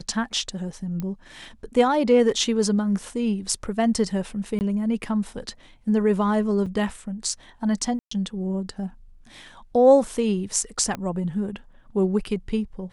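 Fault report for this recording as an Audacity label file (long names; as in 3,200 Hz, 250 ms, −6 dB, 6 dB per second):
1.000000	1.000000	click −18 dBFS
4.590000	4.610000	drop-out 19 ms
6.660000	6.670000	drop-out 5.2 ms
7.990000	8.110000	drop-out 124 ms
10.950000	10.950000	click −16 dBFS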